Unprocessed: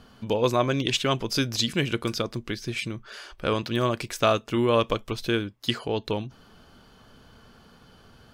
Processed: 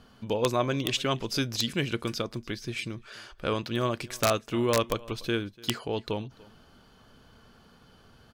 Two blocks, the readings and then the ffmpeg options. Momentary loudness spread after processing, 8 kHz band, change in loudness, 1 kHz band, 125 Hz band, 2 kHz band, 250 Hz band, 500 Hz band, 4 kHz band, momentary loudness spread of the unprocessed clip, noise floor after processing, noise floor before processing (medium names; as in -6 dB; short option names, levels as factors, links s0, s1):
9 LU, -0.5 dB, -3.5 dB, -4.0 dB, -3.5 dB, -3.0 dB, -3.5 dB, -3.5 dB, -3.5 dB, 9 LU, -58 dBFS, -55 dBFS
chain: -af "aecho=1:1:292:0.0708,aeval=exprs='(mod(2.99*val(0)+1,2)-1)/2.99':c=same,volume=0.668"